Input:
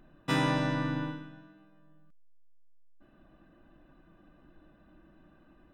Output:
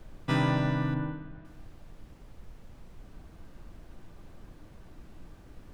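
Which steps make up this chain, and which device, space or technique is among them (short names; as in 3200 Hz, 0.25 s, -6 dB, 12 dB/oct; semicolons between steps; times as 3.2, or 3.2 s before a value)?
car interior (bell 110 Hz +8.5 dB 0.74 oct; high shelf 4900 Hz -8 dB; brown noise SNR 11 dB); 0.94–1.45 LPF 2200 Hz 12 dB/oct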